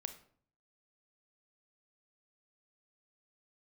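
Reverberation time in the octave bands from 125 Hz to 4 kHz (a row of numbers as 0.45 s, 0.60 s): 0.75 s, 0.70 s, 0.55 s, 0.50 s, 0.40 s, 0.35 s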